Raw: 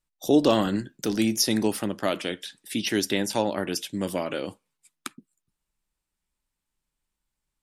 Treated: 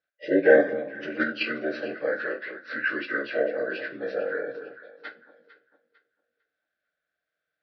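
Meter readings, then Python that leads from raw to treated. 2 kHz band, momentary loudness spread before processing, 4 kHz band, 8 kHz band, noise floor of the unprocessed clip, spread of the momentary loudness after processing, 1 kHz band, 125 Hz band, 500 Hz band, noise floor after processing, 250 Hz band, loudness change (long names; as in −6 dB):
+8.5 dB, 16 LU, −11.0 dB, below −35 dB, −84 dBFS, 21 LU, −5.0 dB, below −10 dB, +3.0 dB, −85 dBFS, −6.5 dB, −0.5 dB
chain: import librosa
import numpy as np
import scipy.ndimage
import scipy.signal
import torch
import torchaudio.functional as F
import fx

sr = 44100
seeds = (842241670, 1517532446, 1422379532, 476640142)

p1 = fx.partial_stretch(x, sr, pct=77)
p2 = fx.echo_alternate(p1, sr, ms=225, hz=980.0, feedback_pct=51, wet_db=-9)
p3 = fx.dynamic_eq(p2, sr, hz=1000.0, q=1.5, threshold_db=-43.0, ratio=4.0, max_db=-3)
p4 = fx.level_steps(p3, sr, step_db=22)
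p5 = p3 + (p4 * librosa.db_to_amplitude(1.5))
p6 = fx.double_bandpass(p5, sr, hz=940.0, octaves=1.4)
p7 = fx.rev_double_slope(p6, sr, seeds[0], early_s=0.22, late_s=1.8, knee_db=-28, drr_db=4.5)
y = p7 * librosa.db_to_amplitude(8.0)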